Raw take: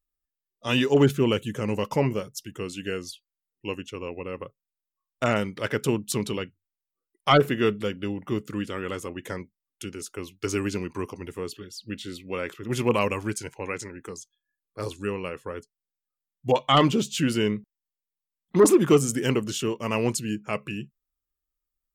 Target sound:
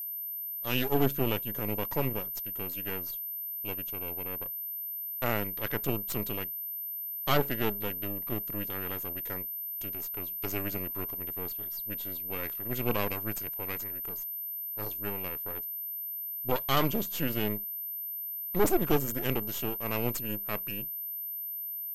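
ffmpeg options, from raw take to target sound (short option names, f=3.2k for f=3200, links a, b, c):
-af "aeval=exprs='max(val(0),0)':c=same,aeval=exprs='val(0)+0.0316*sin(2*PI*13000*n/s)':c=same,volume=-4.5dB"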